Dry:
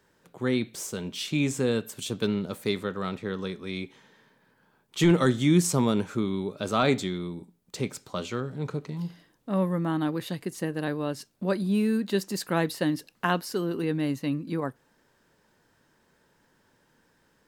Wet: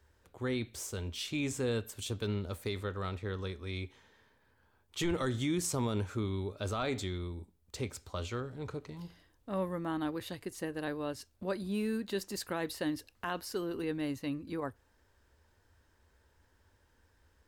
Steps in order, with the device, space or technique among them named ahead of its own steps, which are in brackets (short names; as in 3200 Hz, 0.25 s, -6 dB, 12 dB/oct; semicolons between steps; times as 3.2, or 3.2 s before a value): car stereo with a boomy subwoofer (resonant low shelf 110 Hz +12 dB, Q 3; limiter -18.5 dBFS, peak gain reduction 7 dB); gain -5.5 dB